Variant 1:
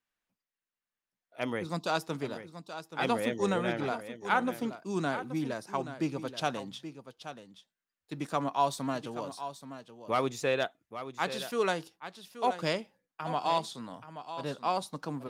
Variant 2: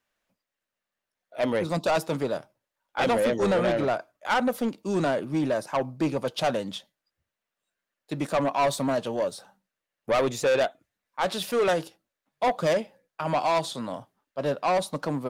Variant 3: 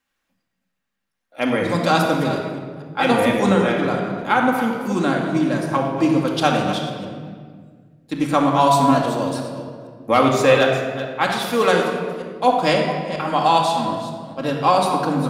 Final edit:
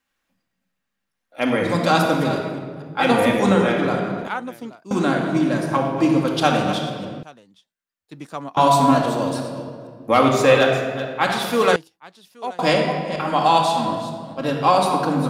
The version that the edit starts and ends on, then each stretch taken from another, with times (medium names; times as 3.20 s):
3
4.28–4.91 s: from 1
7.23–8.57 s: from 1
11.76–12.59 s: from 1
not used: 2